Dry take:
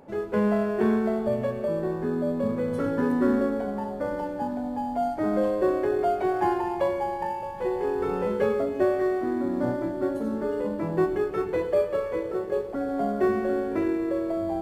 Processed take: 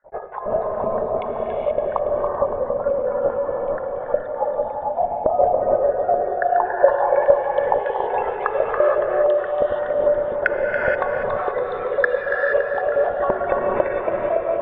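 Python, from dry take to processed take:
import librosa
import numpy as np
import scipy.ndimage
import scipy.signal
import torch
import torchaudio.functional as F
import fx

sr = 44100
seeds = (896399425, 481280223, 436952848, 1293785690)

y = fx.spec_dropout(x, sr, seeds[0], share_pct=62)
y = fx.lpc_vocoder(y, sr, seeds[1], excitation='whisper', order=16)
y = 10.0 ** (-3.0 / 20.0) * np.tanh(y / 10.0 ** (-3.0 / 20.0))
y = fx.lowpass(y, sr, hz=fx.steps((0.0, 1100.0), (6.89, 2800.0)), slope=12)
y = fx.low_shelf_res(y, sr, hz=420.0, db=-11.5, q=3.0)
y = fx.echo_split(y, sr, split_hz=360.0, low_ms=458, high_ms=282, feedback_pct=52, wet_db=-7.5)
y = fx.rev_gated(y, sr, seeds[2], gate_ms=500, shape='rising', drr_db=-1.0)
y = F.gain(torch.from_numpy(y), 3.0).numpy()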